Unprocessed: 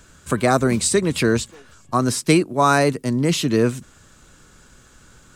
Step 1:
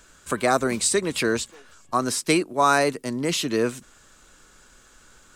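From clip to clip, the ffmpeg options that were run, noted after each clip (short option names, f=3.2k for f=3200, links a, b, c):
-af "equalizer=f=110:t=o:w=2.3:g=-11.5,volume=-1.5dB"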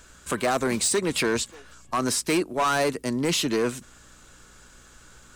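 -filter_complex "[0:a]asplit=2[a][b];[b]alimiter=limit=-15dB:level=0:latency=1:release=93,volume=2dB[c];[a][c]amix=inputs=2:normalize=0,volume=13dB,asoftclip=hard,volume=-13dB,aeval=exprs='val(0)+0.00251*(sin(2*PI*60*n/s)+sin(2*PI*2*60*n/s)/2+sin(2*PI*3*60*n/s)/3+sin(2*PI*4*60*n/s)/4+sin(2*PI*5*60*n/s)/5)':c=same,volume=-5.5dB"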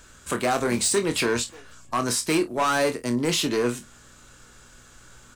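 -af "aecho=1:1:25|50:0.398|0.168"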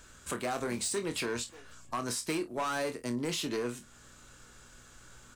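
-af "alimiter=limit=-21.5dB:level=0:latency=1:release=355,volume=-4.5dB"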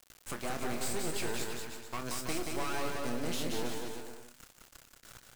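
-filter_complex "[0:a]acrusher=bits=5:dc=4:mix=0:aa=0.000001,asplit=2[a][b];[b]aecho=0:1:180|324|439.2|531.4|605.1:0.631|0.398|0.251|0.158|0.1[c];[a][c]amix=inputs=2:normalize=0"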